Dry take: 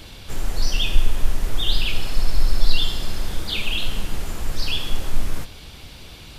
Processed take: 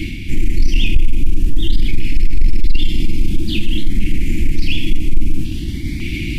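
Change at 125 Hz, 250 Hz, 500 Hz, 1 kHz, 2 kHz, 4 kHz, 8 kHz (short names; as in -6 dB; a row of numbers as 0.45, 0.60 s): +9.0 dB, +13.5 dB, +2.5 dB, under -15 dB, +3.5 dB, -2.5 dB, n/a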